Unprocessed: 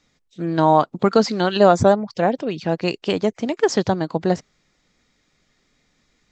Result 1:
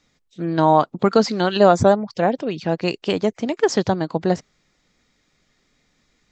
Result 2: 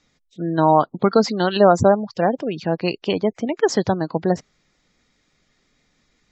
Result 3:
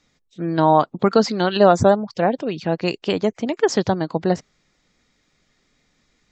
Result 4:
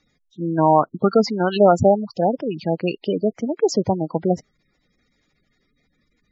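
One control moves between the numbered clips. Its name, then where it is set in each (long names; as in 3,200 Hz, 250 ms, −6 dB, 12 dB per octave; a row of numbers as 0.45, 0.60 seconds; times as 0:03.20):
gate on every frequency bin, under each frame's peak: −60, −30, −45, −15 decibels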